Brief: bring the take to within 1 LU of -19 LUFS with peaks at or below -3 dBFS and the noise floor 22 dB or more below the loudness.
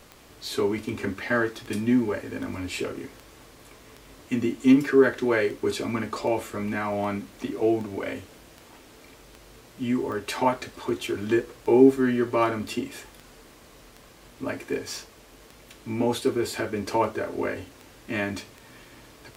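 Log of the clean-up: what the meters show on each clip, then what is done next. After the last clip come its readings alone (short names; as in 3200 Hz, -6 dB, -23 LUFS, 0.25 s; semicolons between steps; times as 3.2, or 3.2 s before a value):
clicks 26; loudness -26.0 LUFS; peak -5.0 dBFS; loudness target -19.0 LUFS
-> de-click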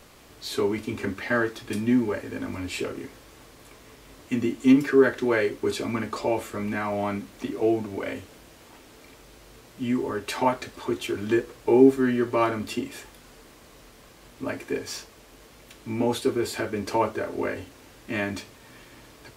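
clicks 0; loudness -26.0 LUFS; peak -5.0 dBFS; loudness target -19.0 LUFS
-> gain +7 dB; limiter -3 dBFS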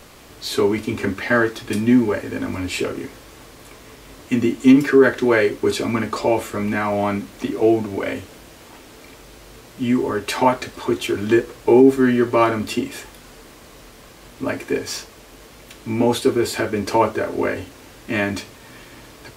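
loudness -19.5 LUFS; peak -3.0 dBFS; noise floor -44 dBFS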